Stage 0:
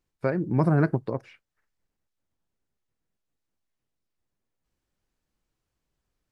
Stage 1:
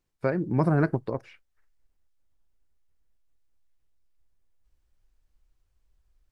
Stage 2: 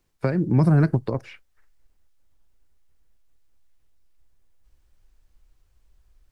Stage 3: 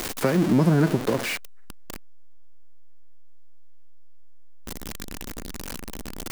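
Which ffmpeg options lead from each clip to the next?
ffmpeg -i in.wav -af "asubboost=boost=9.5:cutoff=61" out.wav
ffmpeg -i in.wav -filter_complex "[0:a]acrossover=split=220|3000[link_01][link_02][link_03];[link_02]acompressor=threshold=-33dB:ratio=6[link_04];[link_01][link_04][link_03]amix=inputs=3:normalize=0,volume=8.5dB" out.wav
ffmpeg -i in.wav -af "aeval=exprs='val(0)+0.5*0.075*sgn(val(0))':channel_layout=same,lowshelf=frequency=160:width_type=q:width=1.5:gain=-8.5" out.wav

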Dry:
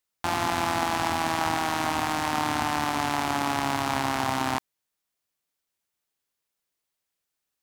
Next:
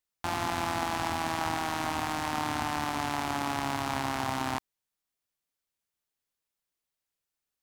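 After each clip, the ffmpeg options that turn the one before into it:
ffmpeg -i in.wav -af "lowshelf=frequency=77:gain=6.5,volume=-5dB" out.wav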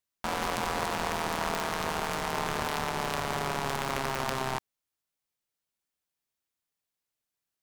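ffmpeg -i in.wav -af "aeval=exprs='val(0)*sgn(sin(2*PI*130*n/s))':channel_layout=same" out.wav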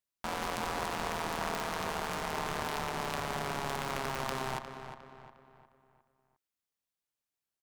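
ffmpeg -i in.wav -filter_complex "[0:a]asplit=2[link_01][link_02];[link_02]adelay=356,lowpass=frequency=3100:poles=1,volume=-9dB,asplit=2[link_03][link_04];[link_04]adelay=356,lowpass=frequency=3100:poles=1,volume=0.44,asplit=2[link_05][link_06];[link_06]adelay=356,lowpass=frequency=3100:poles=1,volume=0.44,asplit=2[link_07][link_08];[link_08]adelay=356,lowpass=frequency=3100:poles=1,volume=0.44,asplit=2[link_09][link_10];[link_10]adelay=356,lowpass=frequency=3100:poles=1,volume=0.44[link_11];[link_01][link_03][link_05][link_07][link_09][link_11]amix=inputs=6:normalize=0,volume=-4.5dB" out.wav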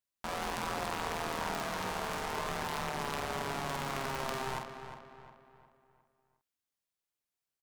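ffmpeg -i in.wav -filter_complex "[0:a]asplit=2[link_01][link_02];[link_02]adelay=48,volume=-5dB[link_03];[link_01][link_03]amix=inputs=2:normalize=0,volume=-2dB" out.wav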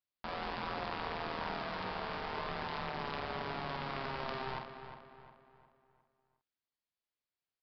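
ffmpeg -i in.wav -af "aresample=11025,aresample=44100,volume=-3dB" out.wav

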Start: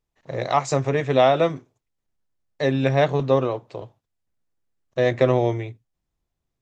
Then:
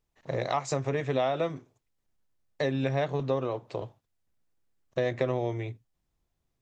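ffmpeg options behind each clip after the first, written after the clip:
ffmpeg -i in.wav -af "acompressor=threshold=-29dB:ratio=3,volume=1dB" out.wav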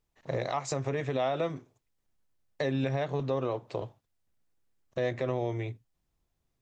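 ffmpeg -i in.wav -af "alimiter=limit=-20dB:level=0:latency=1:release=80" out.wav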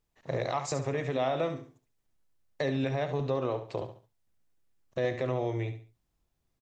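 ffmpeg -i in.wav -af "aecho=1:1:70|140|210:0.316|0.0949|0.0285" out.wav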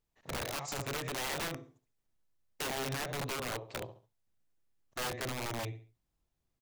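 ffmpeg -i in.wav -af "aeval=exprs='(mod(21.1*val(0)+1,2)-1)/21.1':channel_layout=same,volume=-4.5dB" out.wav

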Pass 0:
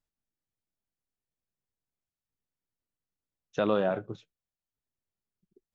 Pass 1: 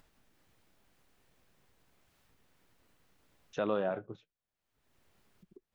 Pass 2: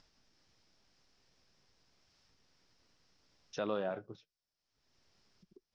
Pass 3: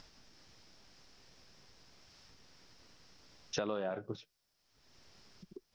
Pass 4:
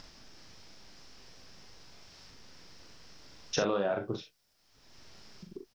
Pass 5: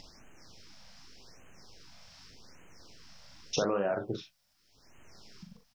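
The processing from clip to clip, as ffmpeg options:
ffmpeg -i in.wav -af "bass=frequency=250:gain=-3,treble=frequency=4000:gain=-9,acompressor=mode=upward:threshold=-39dB:ratio=2.5,volume=-5dB" out.wav
ffmpeg -i in.wav -af "lowpass=frequency=5300:width_type=q:width=6.1,volume=-4dB" out.wav
ffmpeg -i in.wav -af "acompressor=threshold=-43dB:ratio=10,volume=10.5dB" out.wav
ffmpeg -i in.wav -af "aecho=1:1:40|63:0.531|0.251,volume=5.5dB" out.wav
ffmpeg -i in.wav -af "afftfilt=real='re*(1-between(b*sr/1024,320*pow(4500/320,0.5+0.5*sin(2*PI*0.85*pts/sr))/1.41,320*pow(4500/320,0.5+0.5*sin(2*PI*0.85*pts/sr))*1.41))':imag='im*(1-between(b*sr/1024,320*pow(4500/320,0.5+0.5*sin(2*PI*0.85*pts/sr))/1.41,320*pow(4500/320,0.5+0.5*sin(2*PI*0.85*pts/sr))*1.41))':win_size=1024:overlap=0.75" out.wav

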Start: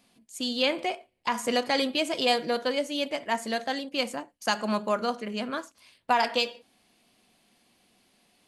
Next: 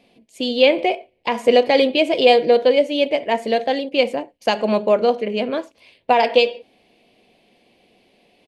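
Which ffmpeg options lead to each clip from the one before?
ffmpeg -i in.wav -af "firequalizer=gain_entry='entry(230,0);entry(460,9);entry(1300,-10);entry(2300,3);entry(6700,-13)':delay=0.05:min_phase=1,volume=7dB" out.wav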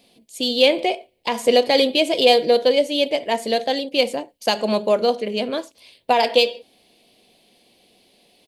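ffmpeg -i in.wav -af "aexciter=amount=1.8:drive=8.9:freq=3400,volume=-2dB" out.wav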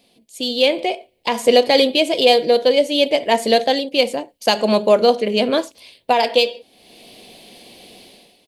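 ffmpeg -i in.wav -af "dynaudnorm=framelen=110:gausssize=7:maxgain=15dB,volume=-1dB" out.wav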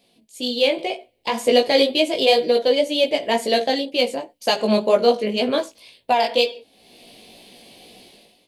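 ffmpeg -i in.wav -af "flanger=delay=16:depth=2.8:speed=2" out.wav

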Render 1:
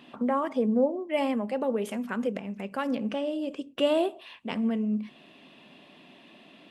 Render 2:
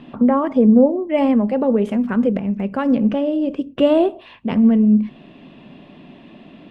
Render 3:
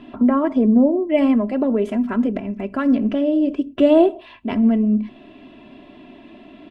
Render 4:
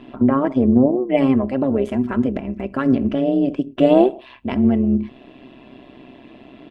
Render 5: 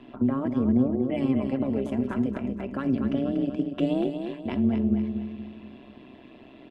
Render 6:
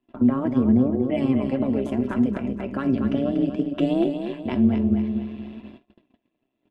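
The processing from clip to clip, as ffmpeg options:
ffmpeg -i in.wav -af "aemphasis=mode=reproduction:type=riaa,volume=7dB" out.wav
ffmpeg -i in.wav -af "aecho=1:1:3:0.7,volume=-2dB" out.wav
ffmpeg -i in.wav -af "tremolo=f=130:d=0.667,volume=3dB" out.wav
ffmpeg -i in.wav -filter_complex "[0:a]acrossover=split=280|3000[link_01][link_02][link_03];[link_02]acompressor=threshold=-24dB:ratio=6[link_04];[link_01][link_04][link_03]amix=inputs=3:normalize=0,aecho=1:1:239|478|717|956|1195:0.447|0.192|0.0826|0.0355|0.0153,volume=-6.5dB" out.wav
ffmpeg -i in.wav -af "agate=range=-33dB:threshold=-43dB:ratio=16:detection=peak,flanger=delay=2.8:depth=7.5:regen=76:speed=0.51:shape=sinusoidal,volume=8dB" out.wav

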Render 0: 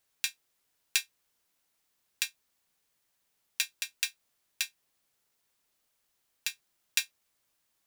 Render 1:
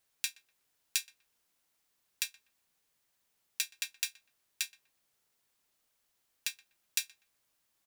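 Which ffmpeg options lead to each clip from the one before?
ffmpeg -i in.wav -filter_complex "[0:a]acrossover=split=4500[link_01][link_02];[link_01]alimiter=limit=-20.5dB:level=0:latency=1:release=186[link_03];[link_03][link_02]amix=inputs=2:normalize=0,asplit=2[link_04][link_05];[link_05]adelay=123,lowpass=frequency=1600:poles=1,volume=-18.5dB,asplit=2[link_06][link_07];[link_07]adelay=123,lowpass=frequency=1600:poles=1,volume=0.33,asplit=2[link_08][link_09];[link_09]adelay=123,lowpass=frequency=1600:poles=1,volume=0.33[link_10];[link_04][link_06][link_08][link_10]amix=inputs=4:normalize=0,volume=-1dB" out.wav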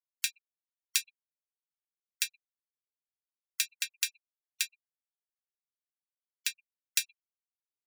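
ffmpeg -i in.wav -af "afftfilt=real='re*gte(hypot(re,im),0.00501)':imag='im*gte(hypot(re,im),0.00501)':win_size=1024:overlap=0.75,volume=3.5dB" out.wav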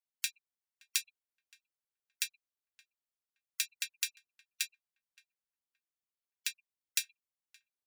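ffmpeg -i in.wav -filter_complex "[0:a]asplit=2[link_01][link_02];[link_02]adelay=571,lowpass=frequency=1000:poles=1,volume=-17dB,asplit=2[link_03][link_04];[link_04]adelay=571,lowpass=frequency=1000:poles=1,volume=0.27,asplit=2[link_05][link_06];[link_06]adelay=571,lowpass=frequency=1000:poles=1,volume=0.27[link_07];[link_01][link_03][link_05][link_07]amix=inputs=4:normalize=0,volume=-3.5dB" out.wav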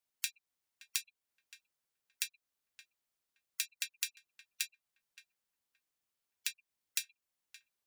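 ffmpeg -i in.wav -af "acompressor=threshold=-45dB:ratio=2,volume=6dB" out.wav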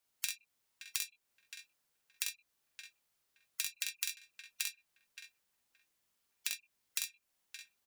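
ffmpeg -i in.wav -filter_complex "[0:a]acrossover=split=190[link_01][link_02];[link_02]acompressor=threshold=-44dB:ratio=2[link_03];[link_01][link_03]amix=inputs=2:normalize=0,aecho=1:1:45|65:0.631|0.376,volume=5.5dB" out.wav

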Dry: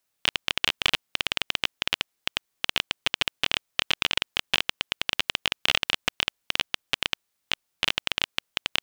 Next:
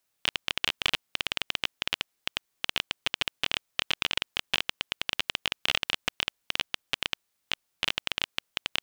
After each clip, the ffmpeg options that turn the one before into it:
ffmpeg -i in.wav -af "alimiter=limit=-7.5dB:level=0:latency=1:release=12" out.wav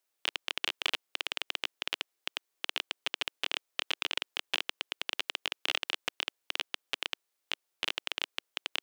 ffmpeg -i in.wav -af "lowshelf=frequency=260:width_type=q:width=1.5:gain=-9.5,volume=-4.5dB" out.wav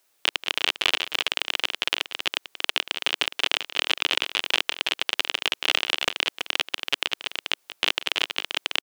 ffmpeg -i in.wav -filter_complex "[0:a]asplit=2[link_01][link_02];[link_02]aecho=0:1:183|329:0.106|0.282[link_03];[link_01][link_03]amix=inputs=2:normalize=0,alimiter=level_in=16.5dB:limit=-1dB:release=50:level=0:latency=1,volume=-2dB" out.wav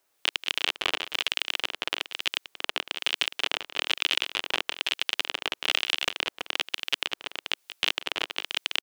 ffmpeg -i in.wav -filter_complex "[0:a]acrossover=split=1700[link_01][link_02];[link_01]aeval=exprs='val(0)*(1-0.5/2+0.5/2*cos(2*PI*1.1*n/s))':channel_layout=same[link_03];[link_02]aeval=exprs='val(0)*(1-0.5/2-0.5/2*cos(2*PI*1.1*n/s))':channel_layout=same[link_04];[link_03][link_04]amix=inputs=2:normalize=0,volume=-1dB" out.wav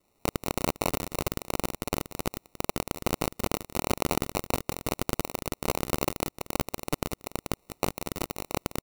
ffmpeg -i in.wav -af "acrusher=samples=27:mix=1:aa=0.000001,crystalizer=i=2:c=0,asoftclip=type=hard:threshold=-12.5dB" out.wav

